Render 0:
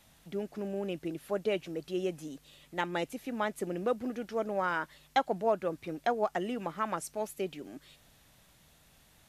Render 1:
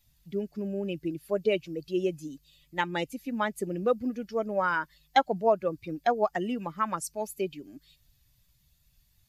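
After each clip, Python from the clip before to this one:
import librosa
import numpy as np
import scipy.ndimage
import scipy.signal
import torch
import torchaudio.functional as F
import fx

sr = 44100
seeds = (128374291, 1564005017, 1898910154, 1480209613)

y = fx.bin_expand(x, sr, power=1.5)
y = F.gain(torch.from_numpy(y), 6.5).numpy()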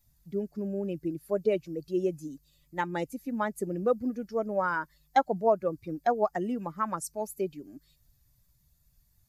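y = fx.peak_eq(x, sr, hz=3000.0, db=-12.0, octaves=1.1)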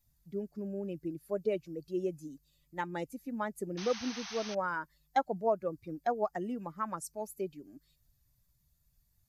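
y = fx.spec_paint(x, sr, seeds[0], shape='noise', start_s=3.77, length_s=0.78, low_hz=680.0, high_hz=6400.0, level_db=-39.0)
y = F.gain(torch.from_numpy(y), -5.5).numpy()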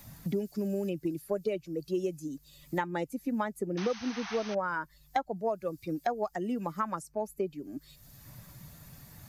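y = fx.band_squash(x, sr, depth_pct=100)
y = F.gain(torch.from_numpy(y), 2.0).numpy()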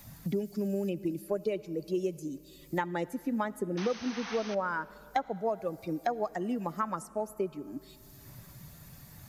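y = fx.rev_freeverb(x, sr, rt60_s=2.9, hf_ratio=0.85, predelay_ms=35, drr_db=18.5)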